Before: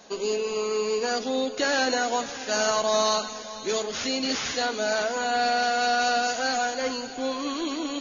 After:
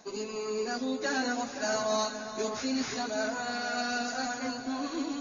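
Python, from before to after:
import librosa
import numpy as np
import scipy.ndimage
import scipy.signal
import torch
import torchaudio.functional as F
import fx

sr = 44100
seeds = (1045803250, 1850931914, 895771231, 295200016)

p1 = fx.stretch_vocoder_free(x, sr, factor=0.65)
p2 = fx.graphic_eq_31(p1, sr, hz=(125, 250, 500, 3150), db=(11, 6, -4, -9))
p3 = p2 + fx.echo_alternate(p2, sr, ms=521, hz=1800.0, feedback_pct=55, wet_db=-9, dry=0)
y = p3 * 10.0 ** (-3.0 / 20.0)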